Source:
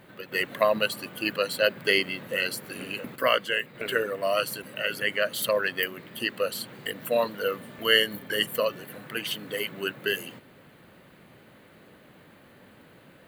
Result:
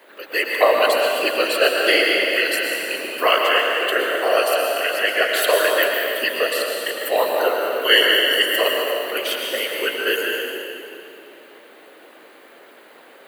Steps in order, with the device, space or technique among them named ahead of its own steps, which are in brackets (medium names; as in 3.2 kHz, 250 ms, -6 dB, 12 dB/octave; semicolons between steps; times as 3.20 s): whispering ghost (whisper effect; high-pass 350 Hz 24 dB/octave; reverberation RT60 2.7 s, pre-delay 103 ms, DRR -0.5 dB); trim +6 dB